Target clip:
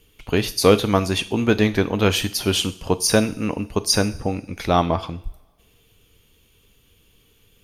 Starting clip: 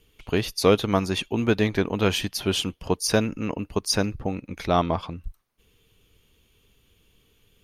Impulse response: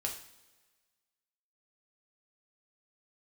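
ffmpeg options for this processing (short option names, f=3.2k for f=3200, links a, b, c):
-filter_complex "[0:a]asplit=2[a][b];[b]highshelf=f=5.2k:g=11.5[c];[1:a]atrim=start_sample=2205[d];[c][d]afir=irnorm=-1:irlink=0,volume=-10dB[e];[a][e]amix=inputs=2:normalize=0,volume=1.5dB"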